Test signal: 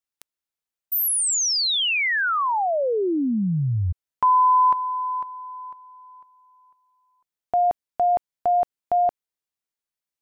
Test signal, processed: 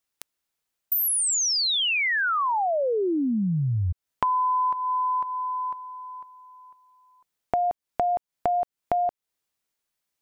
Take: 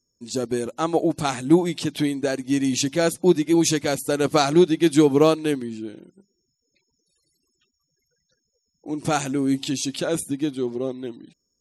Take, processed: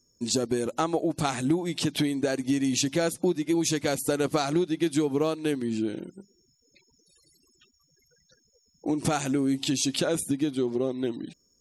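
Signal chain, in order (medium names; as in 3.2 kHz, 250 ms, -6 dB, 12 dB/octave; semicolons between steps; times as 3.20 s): compression 6:1, threshold -31 dBFS; trim +7.5 dB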